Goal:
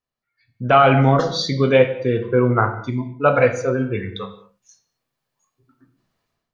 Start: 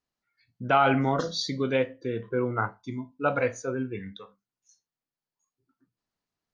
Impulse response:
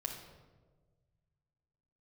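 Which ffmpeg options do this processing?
-filter_complex "[0:a]dynaudnorm=framelen=300:gausssize=3:maxgain=15.5dB,asplit=2[link_01][link_02];[1:a]atrim=start_sample=2205,afade=type=out:start_time=0.29:duration=0.01,atrim=end_sample=13230,lowpass=4500[link_03];[link_02][link_03]afir=irnorm=-1:irlink=0,volume=-0.5dB[link_04];[link_01][link_04]amix=inputs=2:normalize=0,volume=-5dB"

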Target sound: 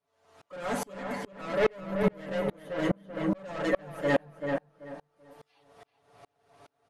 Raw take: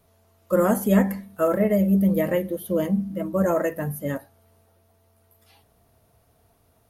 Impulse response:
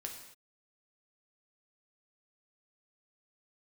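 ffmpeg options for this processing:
-filter_complex "[0:a]asplit=2[link_01][link_02];[link_02]highpass=frequency=720:poles=1,volume=28dB,asoftclip=type=tanh:threshold=-7.5dB[link_03];[link_01][link_03]amix=inputs=2:normalize=0,lowpass=frequency=2800:poles=1,volume=-6dB,lowpass=frequency=9300:width=0.5412,lowpass=frequency=9300:width=1.3066,aecho=1:1:7:0.77,asplit=2[link_04][link_05];[link_05]adelay=385,lowpass=frequency=2500:poles=1,volume=-3dB,asplit=2[link_06][link_07];[link_07]adelay=385,lowpass=frequency=2500:poles=1,volume=0.32,asplit=2[link_08][link_09];[link_09]adelay=385,lowpass=frequency=2500:poles=1,volume=0.32,asplit=2[link_10][link_11];[link_11]adelay=385,lowpass=frequency=2500:poles=1,volume=0.32[link_12];[link_04][link_06][link_08][link_10][link_12]amix=inputs=5:normalize=0,aeval=exprs='val(0)*pow(10,-34*if(lt(mod(-2.4*n/s,1),2*abs(-2.4)/1000),1-mod(-2.4*n/s,1)/(2*abs(-2.4)/1000),(mod(-2.4*n/s,1)-2*abs(-2.4)/1000)/(1-2*abs(-2.4)/1000))/20)':channel_layout=same,volume=-7dB"

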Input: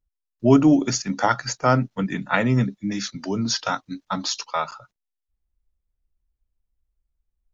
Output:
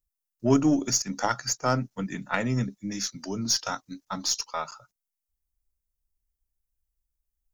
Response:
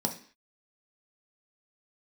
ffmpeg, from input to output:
-af "aexciter=amount=2.2:drive=8.9:freq=5100,aeval=exprs='0.794*(cos(1*acos(clip(val(0)/0.794,-1,1)))-cos(1*PI/2))+0.0562*(cos(3*acos(clip(val(0)/0.794,-1,1)))-cos(3*PI/2))+0.0112*(cos(8*acos(clip(val(0)/0.794,-1,1)))-cos(8*PI/2))':channel_layout=same,volume=-5dB"

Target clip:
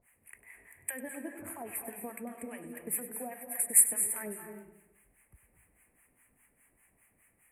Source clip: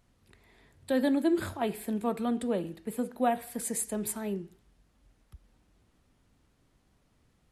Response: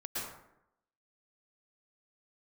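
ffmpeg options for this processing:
-filter_complex "[0:a]equalizer=frequency=1100:width=0.3:gain=11,acompressor=threshold=-29dB:ratio=6,acrossover=split=770[link_01][link_02];[link_01]aeval=exprs='val(0)*(1-1/2+1/2*cos(2*PI*4.9*n/s))':channel_layout=same[link_03];[link_02]aeval=exprs='val(0)*(1-1/2-1/2*cos(2*PI*4.9*n/s))':channel_layout=same[link_04];[link_03][link_04]amix=inputs=2:normalize=0,aexciter=amount=11.5:drive=6.8:freq=2100,asuperstop=centerf=4500:order=8:qfactor=0.66,asplit=2[link_05][link_06];[1:a]atrim=start_sample=2205,adelay=98[link_07];[link_06][link_07]afir=irnorm=-1:irlink=0,volume=-8dB[link_08];[link_05][link_08]amix=inputs=2:normalize=0,volume=-7dB"

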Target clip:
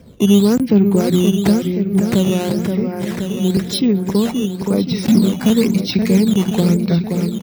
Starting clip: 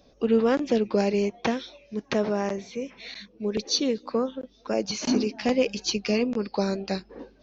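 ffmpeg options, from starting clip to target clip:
ffmpeg -i in.wav -filter_complex "[0:a]bandreject=frequency=50:width_type=h:width=6,bandreject=frequency=100:width_type=h:width=6,bandreject=frequency=150:width_type=h:width=6,bandreject=frequency=200:width_type=h:width=6,asetrate=39289,aresample=44100,atempo=1.12246,bass=frequency=250:gain=11,treble=frequency=4000:gain=-2,asplit=2[link_01][link_02];[link_02]aecho=0:1:525|1050|1575|2100|2625|3150|3675:0.422|0.236|0.132|0.0741|0.0415|0.0232|0.013[link_03];[link_01][link_03]amix=inputs=2:normalize=0,aeval=exprs='0.531*(cos(1*acos(clip(val(0)/0.531,-1,1)))-cos(1*PI/2))+0.0266*(cos(5*acos(clip(val(0)/0.531,-1,1)))-cos(5*PI/2))':channel_layout=same,highpass=92,asplit=2[link_04][link_05];[link_05]acompressor=threshold=-28dB:ratio=6,volume=2dB[link_06];[link_04][link_06]amix=inputs=2:normalize=0,lowshelf=frequency=200:gain=9.5,acrusher=samples=8:mix=1:aa=0.000001:lfo=1:lforange=12.8:lforate=0.97,volume=-1.5dB" out.wav

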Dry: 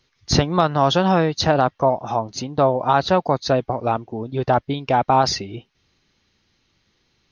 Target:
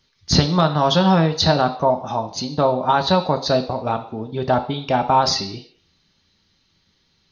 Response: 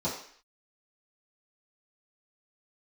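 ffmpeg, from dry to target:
-filter_complex "[0:a]asplit=2[link_01][link_02];[link_02]lowpass=frequency=4000:width_type=q:width=3.9[link_03];[1:a]atrim=start_sample=2205,highshelf=frequency=2400:gain=9.5[link_04];[link_03][link_04]afir=irnorm=-1:irlink=0,volume=-17dB[link_05];[link_01][link_05]amix=inputs=2:normalize=0,volume=-1dB"

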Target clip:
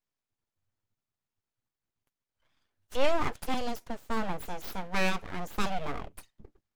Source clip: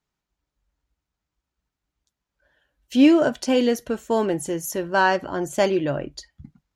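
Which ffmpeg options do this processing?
ffmpeg -i in.wav -filter_complex "[0:a]asettb=1/sr,asplit=3[link_01][link_02][link_03];[link_01]atrim=end=3.544[link_04];[link_02]atrim=start=3.54:end=4,asetpts=PTS-STARTPTS,afade=type=in:duration=0.004:curve=qsin,afade=type=out:start_time=0.456:duration=0.004:curve=qsin,acrossover=split=370|3000[link_05][link_06][link_07];[link_06]acompressor=threshold=-30dB:ratio=6[link_08];[link_05][link_08][link_07]amix=inputs=3:normalize=0[link_09];[link_03]atrim=start=3.996[link_10];[link_04][link_09]acrossfade=duration=0.004:curve1=hsin:curve2=qsin[link_11];[link_11][link_10]acrossfade=duration=0.004:curve1=qsin:curve2=hsin,aeval=exprs='abs(val(0))':channel_layout=same,volume=-7dB" out.wav

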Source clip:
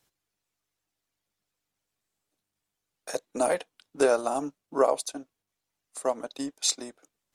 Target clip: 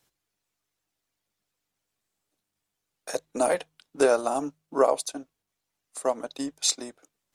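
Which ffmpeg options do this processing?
ffmpeg -i in.wav -af "bandreject=frequency=51.94:width_type=h:width=4,bandreject=frequency=103.88:width_type=h:width=4,bandreject=frequency=155.82:width_type=h:width=4,volume=1.5dB" out.wav

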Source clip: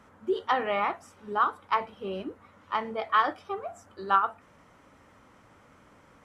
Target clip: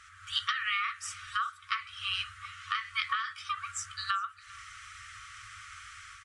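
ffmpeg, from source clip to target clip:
ffmpeg -i in.wav -filter_complex "[0:a]asplit=2[link_01][link_02];[link_02]alimiter=limit=-21dB:level=0:latency=1,volume=-3dB[link_03];[link_01][link_03]amix=inputs=2:normalize=0,afftfilt=real='re*(1-between(b*sr/4096,110,1100))':imag='im*(1-between(b*sr/4096,110,1100))':win_size=4096:overlap=0.75,adynamicequalizer=threshold=0.00158:dfrequency=120:dqfactor=1:tfrequency=120:tqfactor=1:attack=5:release=100:ratio=0.375:range=3:mode=cutabove:tftype=bell,acompressor=threshold=-38dB:ratio=10,tiltshelf=frequency=1300:gain=-7,dynaudnorm=framelen=100:gausssize=5:maxgain=8dB,asplit=2[link_04][link_05];[link_05]aecho=0:1:397:0.0708[link_06];[link_04][link_06]amix=inputs=2:normalize=0,aresample=22050,aresample=44100" out.wav

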